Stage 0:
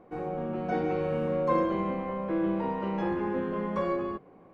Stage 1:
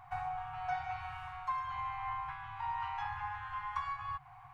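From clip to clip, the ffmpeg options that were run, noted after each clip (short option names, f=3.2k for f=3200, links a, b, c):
-af "acompressor=threshold=-36dB:ratio=6,afftfilt=real='re*(1-between(b*sr/4096,140,710))':imag='im*(1-between(b*sr/4096,140,710))':win_size=4096:overlap=0.75,volume=7dB"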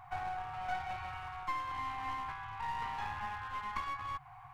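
-af "aeval=exprs='clip(val(0),-1,0.00841)':c=same,volume=1.5dB"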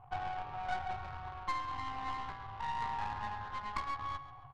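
-filter_complex "[0:a]adynamicsmooth=sensitivity=5.5:basefreq=500,asplit=2[a][b];[b]adelay=136,lowpass=f=4.2k:p=1,volume=-12dB,asplit=2[c][d];[d]adelay=136,lowpass=f=4.2k:p=1,volume=0.53,asplit=2[e][f];[f]adelay=136,lowpass=f=4.2k:p=1,volume=0.53,asplit=2[g][h];[h]adelay=136,lowpass=f=4.2k:p=1,volume=0.53,asplit=2[i][j];[j]adelay=136,lowpass=f=4.2k:p=1,volume=0.53,asplit=2[k][l];[l]adelay=136,lowpass=f=4.2k:p=1,volume=0.53[m];[a][c][e][g][i][k][m]amix=inputs=7:normalize=0,volume=1.5dB"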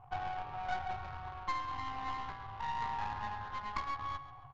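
-af "aresample=16000,aresample=44100"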